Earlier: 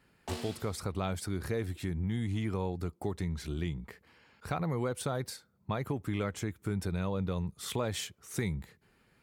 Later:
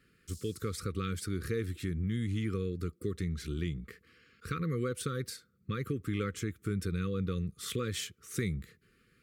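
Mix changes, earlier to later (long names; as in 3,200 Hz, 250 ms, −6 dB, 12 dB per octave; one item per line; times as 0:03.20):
background: add inverse Chebyshev high-pass filter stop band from 1,400 Hz, stop band 70 dB
master: add linear-phase brick-wall band-stop 530–1,100 Hz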